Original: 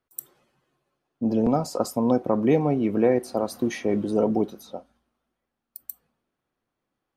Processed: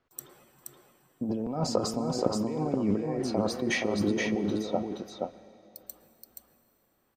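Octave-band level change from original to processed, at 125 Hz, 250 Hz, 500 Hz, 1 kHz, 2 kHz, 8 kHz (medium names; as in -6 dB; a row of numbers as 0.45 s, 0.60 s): -3.5 dB, -5.5 dB, -6.5 dB, -5.5 dB, +4.0 dB, +1.0 dB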